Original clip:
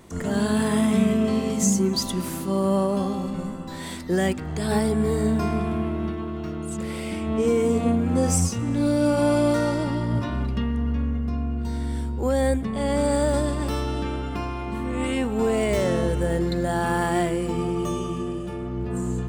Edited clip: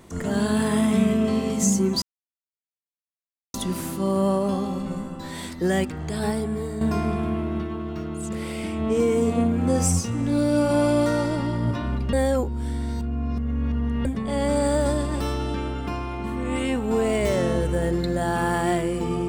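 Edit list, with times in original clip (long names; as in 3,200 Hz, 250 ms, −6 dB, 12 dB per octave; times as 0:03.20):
0:02.02: splice in silence 1.52 s
0:04.35–0:05.29: fade out, to −9 dB
0:10.61–0:12.53: reverse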